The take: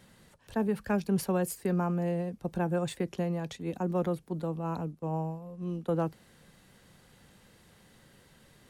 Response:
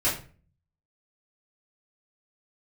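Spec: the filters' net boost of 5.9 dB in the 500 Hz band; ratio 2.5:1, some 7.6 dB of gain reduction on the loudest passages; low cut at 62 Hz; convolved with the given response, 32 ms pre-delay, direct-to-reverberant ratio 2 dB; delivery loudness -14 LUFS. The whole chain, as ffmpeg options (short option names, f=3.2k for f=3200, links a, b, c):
-filter_complex "[0:a]highpass=62,equalizer=f=500:t=o:g=7,acompressor=threshold=-32dB:ratio=2.5,asplit=2[a][b];[1:a]atrim=start_sample=2205,adelay=32[c];[b][c]afir=irnorm=-1:irlink=0,volume=-13.5dB[d];[a][d]amix=inputs=2:normalize=0,volume=18.5dB"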